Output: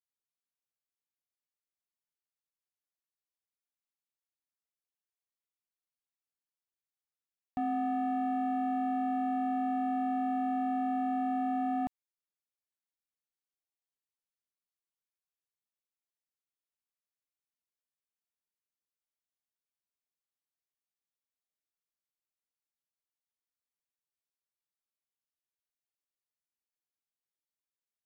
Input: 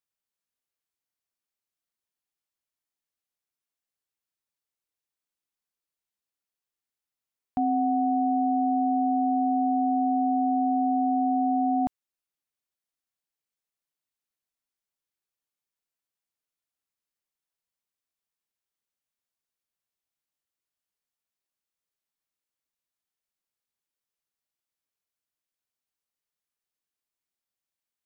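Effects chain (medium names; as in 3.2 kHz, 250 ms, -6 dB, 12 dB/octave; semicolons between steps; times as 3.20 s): waveshaping leveller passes 1; trim -8.5 dB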